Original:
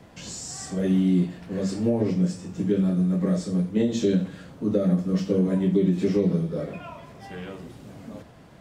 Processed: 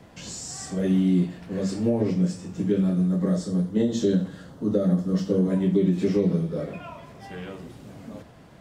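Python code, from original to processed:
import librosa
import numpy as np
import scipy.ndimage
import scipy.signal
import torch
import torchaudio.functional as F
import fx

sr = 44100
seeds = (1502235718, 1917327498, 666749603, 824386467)

y = fx.peak_eq(x, sr, hz=2400.0, db=-13.0, octaves=0.26, at=(3.08, 5.5))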